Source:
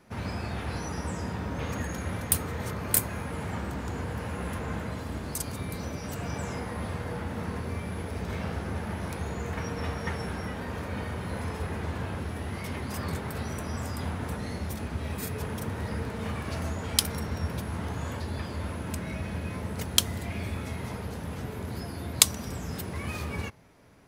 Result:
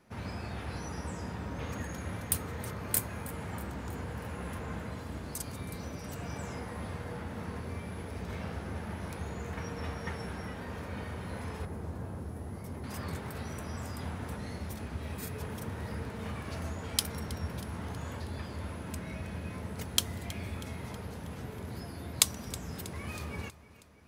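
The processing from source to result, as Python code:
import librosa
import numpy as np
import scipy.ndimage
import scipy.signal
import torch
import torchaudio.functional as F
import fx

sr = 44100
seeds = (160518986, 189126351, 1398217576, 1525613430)

y = fx.peak_eq(x, sr, hz=2800.0, db=-14.0, octaves=2.1, at=(11.65, 12.84))
y = fx.echo_feedback(y, sr, ms=320, feedback_pct=56, wet_db=-18.5)
y = y * librosa.db_to_amplitude(-5.5)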